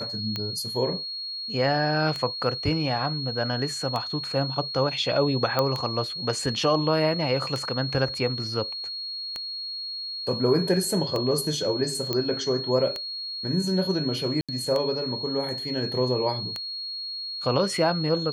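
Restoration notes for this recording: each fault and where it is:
tick 33 1/3 rpm -15 dBFS
whine 4.3 kHz -31 dBFS
5.59 s: pop -9 dBFS
12.13 s: pop -12 dBFS
14.41–14.49 s: dropout 76 ms

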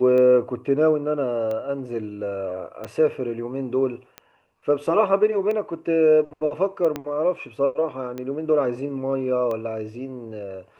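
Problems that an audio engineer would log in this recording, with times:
tick 45 rpm -19 dBFS
2.84 s: pop -21 dBFS
6.96 s: pop -13 dBFS

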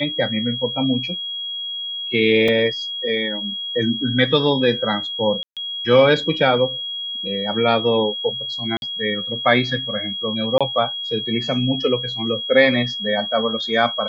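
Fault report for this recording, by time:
whine 3.3 kHz -25 dBFS
2.48 s: dropout 3.7 ms
5.43–5.57 s: dropout 137 ms
8.77–8.82 s: dropout 51 ms
10.58–10.61 s: dropout 26 ms

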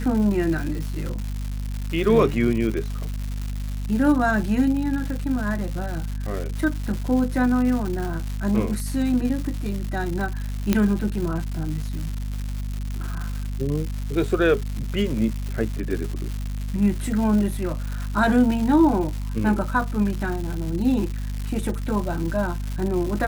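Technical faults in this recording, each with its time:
crackle 270 per s -28 dBFS
hum 50 Hz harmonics 5 -28 dBFS
10.73 s: pop -5 dBFS

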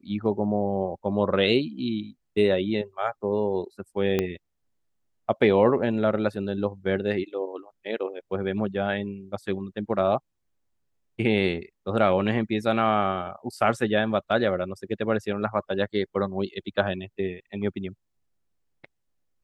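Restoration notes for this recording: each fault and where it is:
4.19 s: pop -11 dBFS

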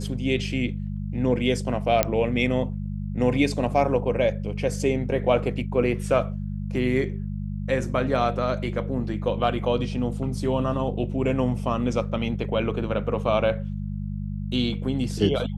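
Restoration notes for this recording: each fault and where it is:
hum 50 Hz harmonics 4 -30 dBFS
2.03 s: pop -3 dBFS

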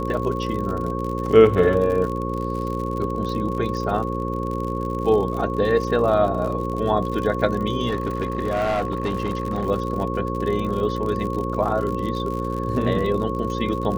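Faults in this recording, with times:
buzz 60 Hz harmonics 9 -27 dBFS
crackle 63 per s -28 dBFS
whine 1.1 kHz -29 dBFS
7.88–9.67 s: clipped -18.5 dBFS

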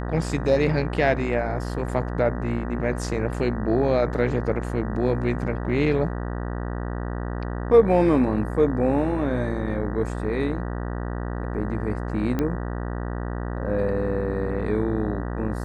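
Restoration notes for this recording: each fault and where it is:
buzz 60 Hz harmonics 32 -29 dBFS
12.39 s: pop -13 dBFS

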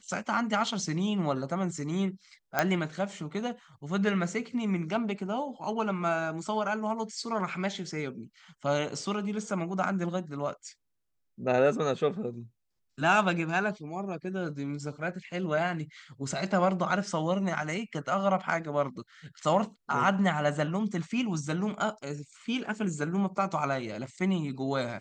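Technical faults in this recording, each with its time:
2.59 s: pop -10 dBFS

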